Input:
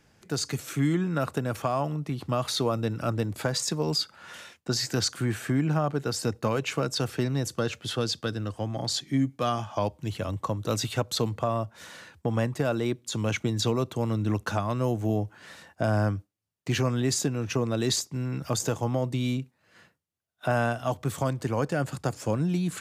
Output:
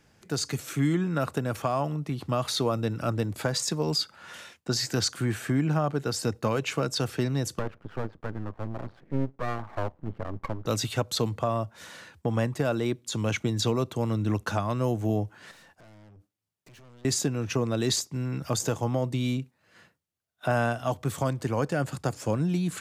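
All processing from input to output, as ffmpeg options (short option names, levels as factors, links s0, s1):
-filter_complex "[0:a]asettb=1/sr,asplit=3[s0][s1][s2];[s0]atrim=end=7.594[s3];[s1]atrim=start=7.59:end=10.66,asetpts=PTS-STARTPTS,afade=t=in:d=0.004:c=qsin,afade=t=out:st=3.066:d=0.004:c=qsin,lowpass=f=1500:w=0.5412,lowpass=f=1500:w=1.3066,aeval=exprs='max(val(0),0)':c=same[s4];[s2]atrim=start=10.656[s5];[s3][s4]acrossfade=d=0.004:c1=hsin:c2=qsin[s6];[s6][s5]acrossfade=d=0.004:c1=qsin:c2=hsin,asettb=1/sr,asplit=3[s7][s8][s9];[s7]atrim=end=15.514[s10];[s8]atrim=start=15.51:end=17.05,asetpts=PTS-STARTPTS,afade=t=in:d=0.004:c=qsin,afade=t=out:st=1.536:d=0.004:c=qsin,highpass=72,acompressor=threshold=0.00794:ratio=4:attack=3.2:release=140:knee=1:detection=peak,aeval=exprs='(tanh(355*val(0)+0.25)-tanh(0.25))/355':c=same[s11];[s9]atrim=start=17.046[s12];[s10][s11]acrossfade=d=0.004:c1=hsin:c2=qsin[s13];[s13][s12]acrossfade=d=0.004:c1=qsin:c2=hsin"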